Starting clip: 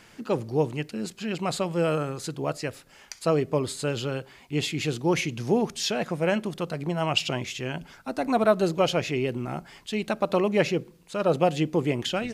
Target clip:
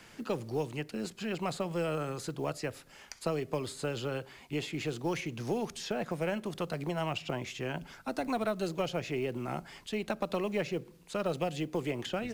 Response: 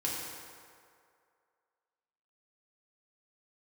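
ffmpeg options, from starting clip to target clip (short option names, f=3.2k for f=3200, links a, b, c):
-filter_complex "[0:a]acrossover=split=120|350|1800[a][b][c][d];[a]acompressor=threshold=-47dB:ratio=4[e];[b]acompressor=threshold=-38dB:ratio=4[f];[c]acompressor=threshold=-32dB:ratio=4[g];[d]acompressor=threshold=-42dB:ratio=4[h];[e][f][g][h]amix=inputs=4:normalize=0,aeval=exprs='0.224*(cos(1*acos(clip(val(0)/0.224,-1,1)))-cos(1*PI/2))+0.0316*(cos(2*acos(clip(val(0)/0.224,-1,1)))-cos(2*PI/2))':c=same,acrusher=bits=8:mode=log:mix=0:aa=0.000001,volume=-1.5dB"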